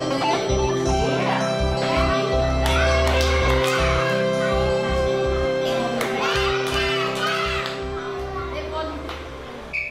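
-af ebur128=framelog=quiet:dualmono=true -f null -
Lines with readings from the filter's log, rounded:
Integrated loudness:
  I:         -18.5 LUFS
  Threshold: -28.7 LUFS
Loudness range:
  LRA:         4.1 LU
  Threshold: -38.2 LUFS
  LRA low:   -20.9 LUFS
  LRA high:  -16.9 LUFS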